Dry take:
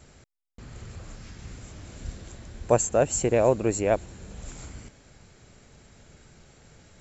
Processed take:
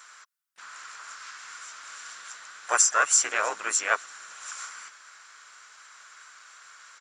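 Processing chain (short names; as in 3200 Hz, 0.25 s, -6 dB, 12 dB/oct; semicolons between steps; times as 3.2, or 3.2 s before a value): resonant high-pass 1400 Hz, resonance Q 6; high shelf 4400 Hz +9 dB; harmoniser -4 st -6 dB, +4 st -13 dB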